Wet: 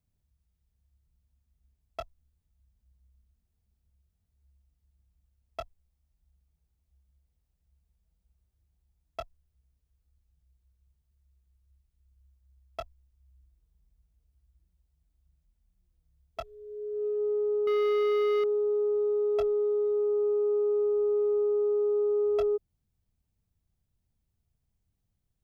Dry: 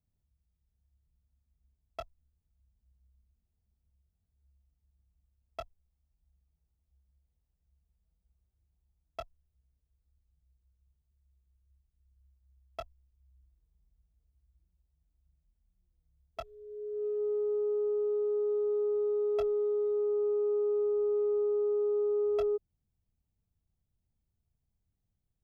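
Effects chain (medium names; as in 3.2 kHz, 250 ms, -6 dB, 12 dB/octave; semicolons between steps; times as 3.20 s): 17.67–18.44 s: waveshaping leveller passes 3; trim +3 dB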